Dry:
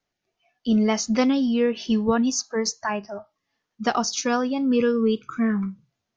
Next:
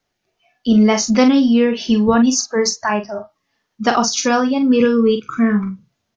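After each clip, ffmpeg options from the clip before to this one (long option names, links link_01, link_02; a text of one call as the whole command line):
ffmpeg -i in.wav -filter_complex "[0:a]asplit=2[link_01][link_02];[link_02]adelay=43,volume=-7.5dB[link_03];[link_01][link_03]amix=inputs=2:normalize=0,volume=7dB" out.wav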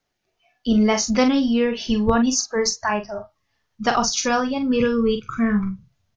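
ffmpeg -i in.wav -af "asubboost=boost=11.5:cutoff=87,volume=-3dB" out.wav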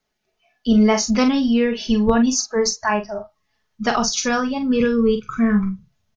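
ffmpeg -i in.wav -af "aecho=1:1:4.7:0.41" out.wav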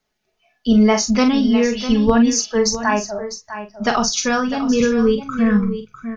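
ffmpeg -i in.wav -af "aecho=1:1:652:0.266,volume=1.5dB" out.wav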